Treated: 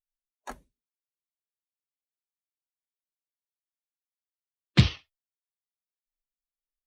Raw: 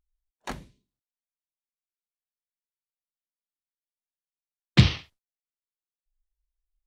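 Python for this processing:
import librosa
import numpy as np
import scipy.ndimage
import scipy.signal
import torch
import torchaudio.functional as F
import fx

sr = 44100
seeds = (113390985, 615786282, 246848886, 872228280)

y = fx.bin_expand(x, sr, power=1.5)
y = y * librosa.db_to_amplitude(-1.5)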